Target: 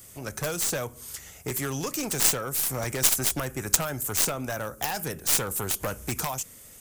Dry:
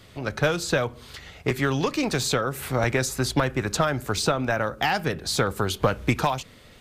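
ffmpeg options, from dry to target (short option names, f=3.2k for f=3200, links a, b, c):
-af "aexciter=amount=8.4:drive=7.6:freq=6k,aeval=exprs='1.19*(cos(1*acos(clip(val(0)/1.19,-1,1)))-cos(1*PI/2))+0.299*(cos(2*acos(clip(val(0)/1.19,-1,1)))-cos(2*PI/2))+0.376*(cos(7*acos(clip(val(0)/1.19,-1,1)))-cos(7*PI/2))':c=same,volume=-7.5dB"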